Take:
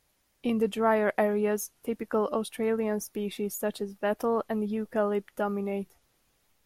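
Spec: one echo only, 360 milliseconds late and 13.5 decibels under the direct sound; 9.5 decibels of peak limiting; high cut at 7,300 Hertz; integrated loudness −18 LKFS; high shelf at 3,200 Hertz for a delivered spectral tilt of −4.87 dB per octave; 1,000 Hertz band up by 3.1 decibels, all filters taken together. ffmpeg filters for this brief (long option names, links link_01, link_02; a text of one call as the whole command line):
ffmpeg -i in.wav -af "lowpass=7300,equalizer=frequency=1000:width_type=o:gain=3.5,highshelf=frequency=3200:gain=5.5,alimiter=limit=-19.5dB:level=0:latency=1,aecho=1:1:360:0.211,volume=12.5dB" out.wav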